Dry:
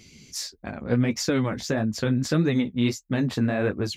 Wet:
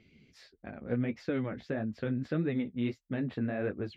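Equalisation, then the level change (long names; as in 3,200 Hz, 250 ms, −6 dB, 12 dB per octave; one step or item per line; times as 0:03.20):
high-frequency loss of the air 490 metres
low-shelf EQ 260 Hz −7.5 dB
parametric band 1,000 Hz −8 dB 0.72 octaves
−4.0 dB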